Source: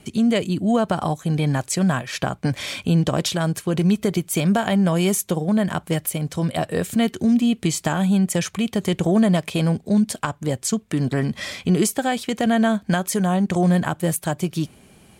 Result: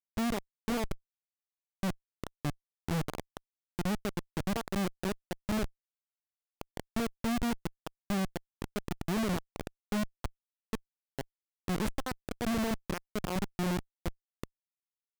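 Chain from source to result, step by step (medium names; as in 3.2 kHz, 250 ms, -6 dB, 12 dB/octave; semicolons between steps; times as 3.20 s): Chebyshev shaper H 2 -10 dB, 3 -12 dB, 4 -33 dB, 7 -30 dB, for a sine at -7.5 dBFS; level-controlled noise filter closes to 2.6 kHz, open at -18 dBFS; Schmitt trigger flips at -23.5 dBFS; trim -2 dB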